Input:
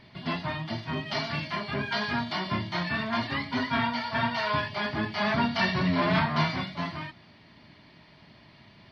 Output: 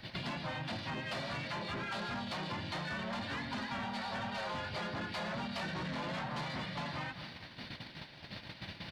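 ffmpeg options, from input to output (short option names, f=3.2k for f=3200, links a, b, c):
-filter_complex "[0:a]asplit=2[a][b];[b]asetrate=37084,aresample=44100,atempo=1.18921,volume=0dB[c];[a][c]amix=inputs=2:normalize=0,acrossover=split=210|630|1800[d][e][f][g];[d]acompressor=threshold=-39dB:ratio=4[h];[e]acompressor=threshold=-37dB:ratio=4[i];[f]acompressor=threshold=-37dB:ratio=4[j];[g]acompressor=threshold=-46dB:ratio=4[k];[h][i][j][k]amix=inputs=4:normalize=0,aecho=1:1:203|406|609|812:0.0944|0.0481|0.0246|0.0125,agate=range=-13dB:threshold=-49dB:ratio=16:detection=peak,highshelf=f=3.1k:g=11,asoftclip=type=tanh:threshold=-29dB,acompressor=threshold=-48dB:ratio=4,volume=8dB"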